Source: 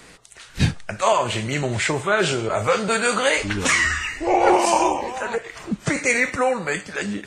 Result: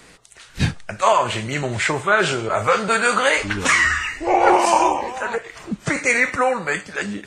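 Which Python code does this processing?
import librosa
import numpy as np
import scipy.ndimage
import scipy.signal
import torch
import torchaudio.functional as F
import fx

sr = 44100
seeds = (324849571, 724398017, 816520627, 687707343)

y = fx.dynamic_eq(x, sr, hz=1300.0, q=0.85, threshold_db=-31.0, ratio=4.0, max_db=6)
y = y * librosa.db_to_amplitude(-1.0)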